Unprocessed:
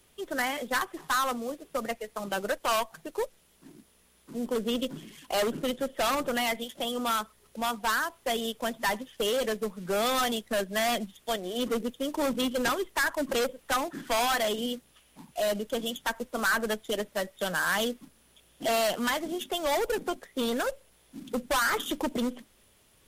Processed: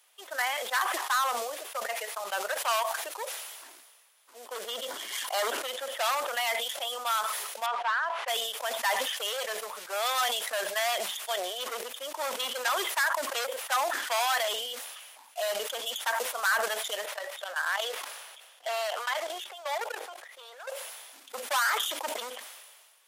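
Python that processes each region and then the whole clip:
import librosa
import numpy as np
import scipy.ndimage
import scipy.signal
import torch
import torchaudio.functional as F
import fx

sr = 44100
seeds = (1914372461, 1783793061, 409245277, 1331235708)

y = fx.chain(x, sr, fx.low_shelf(hz=240.0, db=5.0),
    fx.notch(hz=2600.0, q=7.3),
    fx.sustainer(db_per_s=21.0), at=(4.67, 5.51))
y = fx.chain(y, sr, fx.bandpass_edges(low_hz=450.0, high_hz=2600.0),
    fx.sustainer(db_per_s=140.0), at=(7.66, 8.28))
y = fx.chain(y, sr, fx.highpass(hz=380.0, slope=24),
    fx.level_steps(step_db=14),
    fx.high_shelf(hz=5800.0, db=-8.0), at=(17.05, 20.7))
y = scipy.signal.sosfilt(scipy.signal.butter(4, 660.0, 'highpass', fs=sr, output='sos'), y)
y = fx.sustainer(y, sr, db_per_s=35.0)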